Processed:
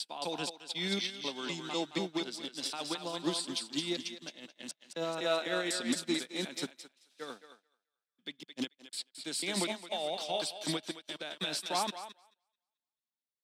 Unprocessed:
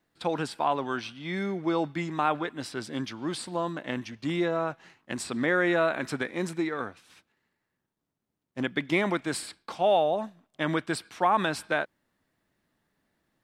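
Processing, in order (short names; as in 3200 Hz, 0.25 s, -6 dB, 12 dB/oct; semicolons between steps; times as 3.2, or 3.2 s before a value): slices in reverse order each 0.248 s, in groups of 3; steep high-pass 160 Hz 36 dB/oct; resonant high shelf 2500 Hz +12.5 dB, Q 1.5; notch 1100 Hz, Q 17; limiter -21.5 dBFS, peak gain reduction 12.5 dB; thinning echo 0.218 s, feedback 43%, high-pass 490 Hz, level -3 dB; upward expander 2.5:1, over -50 dBFS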